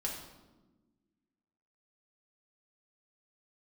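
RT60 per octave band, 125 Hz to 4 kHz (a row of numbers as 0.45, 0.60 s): 1.7, 2.0, 1.4, 1.0, 0.80, 0.75 s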